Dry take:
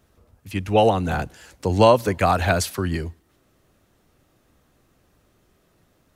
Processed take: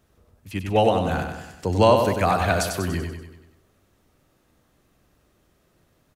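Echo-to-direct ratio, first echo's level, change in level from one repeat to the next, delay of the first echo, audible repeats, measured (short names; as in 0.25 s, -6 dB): -4.5 dB, -6.0 dB, -5.5 dB, 96 ms, 6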